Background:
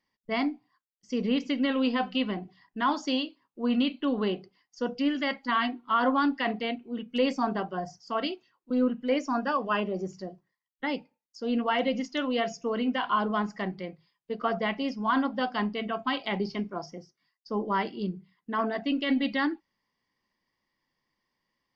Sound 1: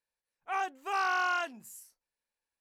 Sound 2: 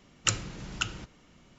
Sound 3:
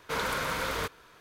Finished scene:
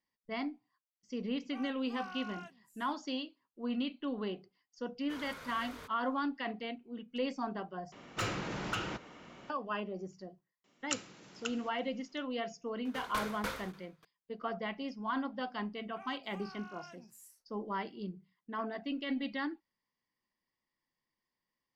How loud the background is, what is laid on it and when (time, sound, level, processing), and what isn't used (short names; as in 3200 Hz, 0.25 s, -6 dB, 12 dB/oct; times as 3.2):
background -9.5 dB
1.03 add 1 -17.5 dB
5 add 3 -17.5 dB
7.92 replace with 2 -14.5 dB + overdrive pedal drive 35 dB, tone 1100 Hz, clips at -3.5 dBFS
10.64 add 2 -9.5 dB + HPF 250 Hz
12.85 add 3 -2 dB + dB-ramp tremolo decaying 3.4 Hz, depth 24 dB
15.48 add 1 -7.5 dB + compressor, threshold -42 dBFS